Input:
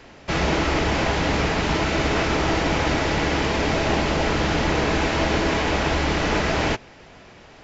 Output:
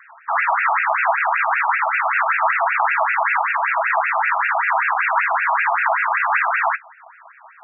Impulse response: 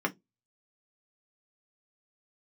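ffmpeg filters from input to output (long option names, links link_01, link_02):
-filter_complex "[0:a]adynamicsmooth=sensitivity=7:basefreq=1500,asplit=2[link_01][link_02];[1:a]atrim=start_sample=2205,asetrate=39249,aresample=44100[link_03];[link_02][link_03]afir=irnorm=-1:irlink=0,volume=-10.5dB[link_04];[link_01][link_04]amix=inputs=2:normalize=0,afftfilt=real='re*between(b*sr/1024,890*pow(2000/890,0.5+0.5*sin(2*PI*5.2*pts/sr))/1.41,890*pow(2000/890,0.5+0.5*sin(2*PI*5.2*pts/sr))*1.41)':imag='im*between(b*sr/1024,890*pow(2000/890,0.5+0.5*sin(2*PI*5.2*pts/sr))/1.41,890*pow(2000/890,0.5+0.5*sin(2*PI*5.2*pts/sr))*1.41)':win_size=1024:overlap=0.75,volume=7dB"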